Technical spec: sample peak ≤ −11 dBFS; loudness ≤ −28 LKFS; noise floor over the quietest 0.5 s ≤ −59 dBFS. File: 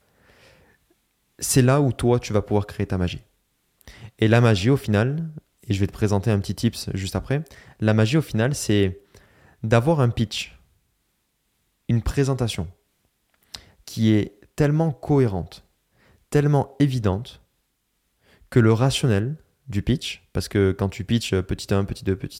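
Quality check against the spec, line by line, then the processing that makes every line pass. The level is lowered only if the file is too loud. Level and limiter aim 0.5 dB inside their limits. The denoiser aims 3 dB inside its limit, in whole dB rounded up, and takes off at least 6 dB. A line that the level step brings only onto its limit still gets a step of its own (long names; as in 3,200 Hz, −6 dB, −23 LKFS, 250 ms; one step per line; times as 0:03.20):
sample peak −4.0 dBFS: out of spec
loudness −22.5 LKFS: out of spec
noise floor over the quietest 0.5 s −72 dBFS: in spec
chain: level −6 dB
brickwall limiter −11.5 dBFS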